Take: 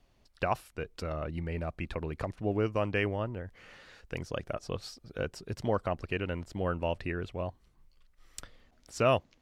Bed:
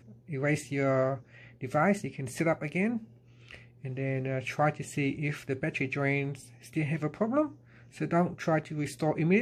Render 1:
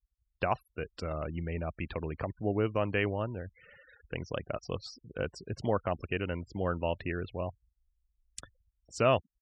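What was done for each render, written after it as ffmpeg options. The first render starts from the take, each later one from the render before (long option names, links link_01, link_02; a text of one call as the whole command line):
ffmpeg -i in.wav -af "afftfilt=real='re*gte(hypot(re,im),0.00501)':imag='im*gte(hypot(re,im),0.00501)':win_size=1024:overlap=0.75,highpass=48" out.wav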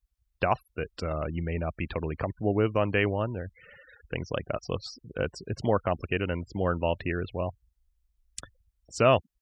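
ffmpeg -i in.wav -af "volume=4.5dB" out.wav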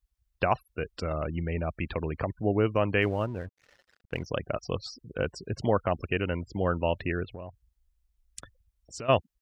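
ffmpeg -i in.wav -filter_complex "[0:a]asettb=1/sr,asplit=3[link_01][link_02][link_03];[link_01]atrim=end=3.024[link_04];[link_02]atrim=start=3.02:end=4.26,asetpts=PTS-STARTPTS,afade=type=in:duration=0.004:curve=qsin,afade=type=out:start_time=1.236:duration=0.004:curve=qsin,aeval=exprs='sgn(val(0))*max(abs(val(0))-0.00282,0)':channel_layout=same[link_05];[link_03]atrim=start=4.256[link_06];[link_04][link_05]acrossfade=duration=0.004:curve1=hsin:curve2=qsin[link_07];[link_07][link_06]acrossfade=duration=0.004:curve1=qsin:curve2=hsin,asplit=3[link_08][link_09][link_10];[link_08]afade=type=out:start_time=7.23:duration=0.02[link_11];[link_09]acompressor=threshold=-37dB:ratio=5:attack=3.2:release=140:knee=1:detection=peak,afade=type=in:start_time=7.23:duration=0.02,afade=type=out:start_time=9.08:duration=0.02[link_12];[link_10]afade=type=in:start_time=9.08:duration=0.02[link_13];[link_11][link_12][link_13]amix=inputs=3:normalize=0" out.wav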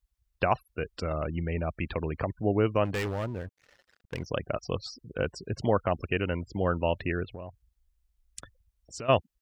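ffmpeg -i in.wav -filter_complex "[0:a]asplit=3[link_01][link_02][link_03];[link_01]afade=type=out:start_time=2.84:duration=0.02[link_04];[link_02]asoftclip=type=hard:threshold=-27.5dB,afade=type=in:start_time=2.84:duration=0.02,afade=type=out:start_time=4.19:duration=0.02[link_05];[link_03]afade=type=in:start_time=4.19:duration=0.02[link_06];[link_04][link_05][link_06]amix=inputs=3:normalize=0" out.wav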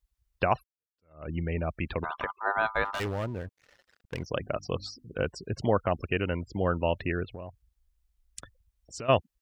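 ffmpeg -i in.wav -filter_complex "[0:a]asplit=3[link_01][link_02][link_03];[link_01]afade=type=out:start_time=2.03:duration=0.02[link_04];[link_02]aeval=exprs='val(0)*sin(2*PI*1100*n/s)':channel_layout=same,afade=type=in:start_time=2.03:duration=0.02,afade=type=out:start_time=2.99:duration=0.02[link_05];[link_03]afade=type=in:start_time=2.99:duration=0.02[link_06];[link_04][link_05][link_06]amix=inputs=3:normalize=0,asettb=1/sr,asplit=3[link_07][link_08][link_09];[link_07]atrim=end=4.264[link_10];[link_08]atrim=start=4.26:end=5.15,asetpts=PTS-STARTPTS,afade=type=in:duration=0.004:curve=qsin,afade=type=out:start_time=0.886:duration=0.004:curve=qsin,bandreject=frequency=50:width_type=h:width=6,bandreject=frequency=100:width_type=h:width=6,bandreject=frequency=150:width_type=h:width=6,bandreject=frequency=200:width_type=h:width=6,bandreject=frequency=250:width_type=h:width=6,bandreject=frequency=300:width_type=h:width=6[link_11];[link_09]atrim=start=5.146[link_12];[link_10][link_11]acrossfade=duration=0.004:curve1=hsin:curve2=qsin[link_13];[link_13][link_12]acrossfade=duration=0.004:curve1=qsin:curve2=hsin,asplit=2[link_14][link_15];[link_14]atrim=end=0.64,asetpts=PTS-STARTPTS,afade=type=out:start_time=0.636:duration=0.004:curve=hsin[link_16];[link_15]atrim=start=0.64,asetpts=PTS-STARTPTS,afade=type=in:duration=0.66:curve=exp[link_17];[link_16][link_17]concat=n=2:v=0:a=1" out.wav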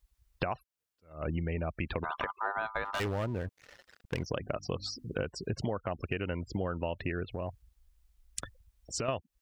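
ffmpeg -i in.wav -filter_complex "[0:a]asplit=2[link_01][link_02];[link_02]alimiter=limit=-17dB:level=0:latency=1:release=83,volume=0dB[link_03];[link_01][link_03]amix=inputs=2:normalize=0,acompressor=threshold=-30dB:ratio=10" out.wav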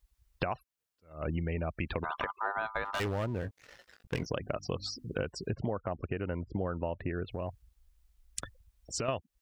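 ffmpeg -i in.wav -filter_complex "[0:a]asettb=1/sr,asplit=3[link_01][link_02][link_03];[link_01]atrim=end=3.414[link_04];[link_02]atrim=start=3.41:end=4.27,asetpts=PTS-STARTPTS,afade=type=in:duration=0.004:curve=qsin,afade=type=out:start_time=0.856:duration=0.004:curve=qsin,asplit=2[link_05][link_06];[link_06]adelay=18,volume=-7.5dB[link_07];[link_05][link_07]amix=inputs=2:normalize=0,atrim=end_sample=37926[link_08];[link_03]atrim=start=4.266[link_09];[link_04][link_08]acrossfade=duration=0.004:curve1=hsin:curve2=qsin[link_10];[link_10][link_09]acrossfade=duration=0.004:curve1=qsin:curve2=hsin,asettb=1/sr,asplit=3[link_11][link_12][link_13];[link_11]atrim=end=5.544[link_14];[link_12]atrim=start=5.54:end=7.25,asetpts=PTS-STARTPTS,afade=type=in:duration=0.004:curve=qsin,afade=type=out:start_time=1.706:duration=0.004:curve=qsin,lowpass=1600[link_15];[link_13]atrim=start=7.246[link_16];[link_14][link_15]acrossfade=duration=0.004:curve1=hsin:curve2=qsin[link_17];[link_17][link_16]acrossfade=duration=0.004:curve1=qsin:curve2=hsin" out.wav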